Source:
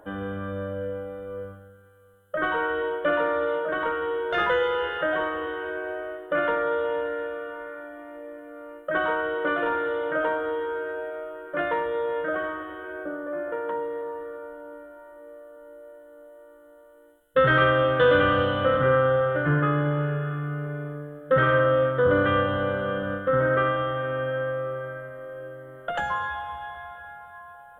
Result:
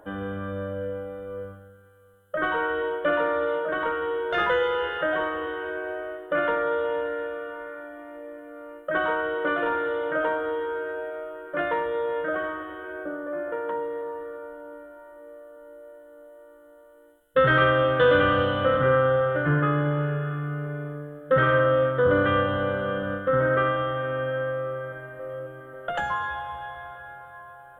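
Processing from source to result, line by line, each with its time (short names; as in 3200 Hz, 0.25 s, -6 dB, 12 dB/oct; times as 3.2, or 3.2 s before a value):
24.65–25.06 echo throw 0.27 s, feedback 80%, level -7 dB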